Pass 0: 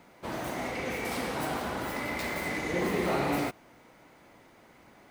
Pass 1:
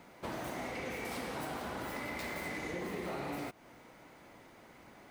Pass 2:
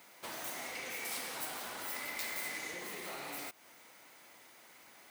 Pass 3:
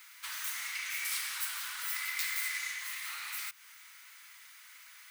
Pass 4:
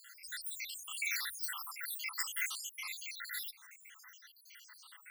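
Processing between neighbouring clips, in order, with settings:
compressor, threshold -37 dBFS, peak gain reduction 12 dB
tilt +4 dB/oct; gain -3.5 dB
inverse Chebyshev band-stop 110–570 Hz, stop band 50 dB; gain +5.5 dB
random spectral dropouts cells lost 82%; gain +4.5 dB

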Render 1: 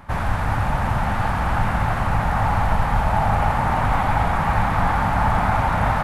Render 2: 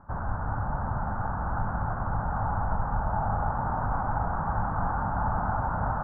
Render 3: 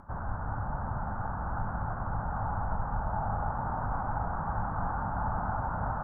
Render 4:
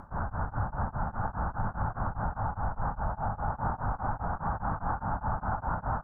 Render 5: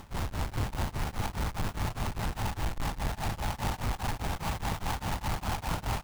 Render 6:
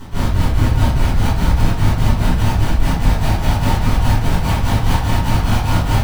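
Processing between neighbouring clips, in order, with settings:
Chebyshev low-pass 1500 Hz, order 5; gain -8.5 dB
upward compressor, threshold -43 dBFS; gain -4 dB
limiter -26.5 dBFS, peak gain reduction 7.5 dB; beating tremolo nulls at 4.9 Hz; gain +6 dB
half-waves squared off; gain -5 dB
reverb RT60 0.50 s, pre-delay 3 ms, DRR -10.5 dB; gain -2 dB

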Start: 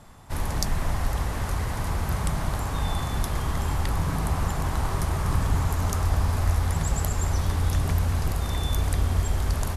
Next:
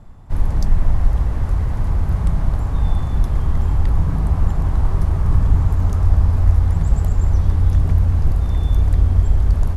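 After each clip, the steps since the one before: tilt -3 dB/oct; gain -2.5 dB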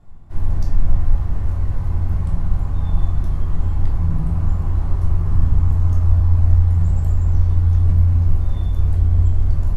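shoebox room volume 480 m³, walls furnished, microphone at 3.3 m; gain -11 dB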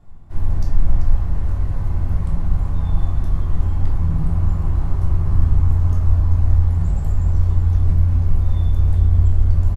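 echo 0.388 s -9.5 dB

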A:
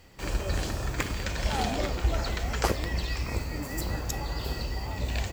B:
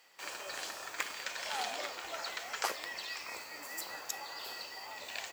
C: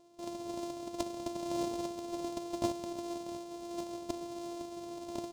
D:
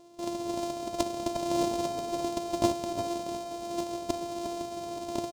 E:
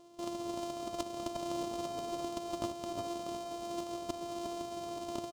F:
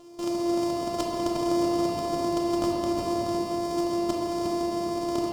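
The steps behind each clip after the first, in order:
HPF 820 Hz 12 dB/oct; gain -3.5 dB
sample sorter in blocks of 128 samples; EQ curve 250 Hz 0 dB, 430 Hz +4 dB, 870 Hz +1 dB, 1600 Hz -18 dB, 3900 Hz -5 dB, 6800 Hz -3 dB, 15000 Hz -15 dB; gain +2 dB
outdoor echo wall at 61 m, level -8 dB; gain +7.5 dB
compressor 3:1, threshold -32 dBFS, peak gain reduction 10 dB; small resonant body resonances 1200/3000 Hz, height 13 dB, ringing for 40 ms; gain -3.5 dB
shoebox room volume 130 m³, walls hard, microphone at 0.5 m; gain +7 dB

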